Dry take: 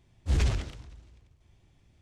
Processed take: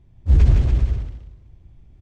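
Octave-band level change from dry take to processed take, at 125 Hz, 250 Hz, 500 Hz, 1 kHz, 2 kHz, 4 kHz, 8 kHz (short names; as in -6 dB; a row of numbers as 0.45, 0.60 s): +13.0 dB, +9.5 dB, +6.0 dB, +3.0 dB, -0.5 dB, -3.0 dB, n/a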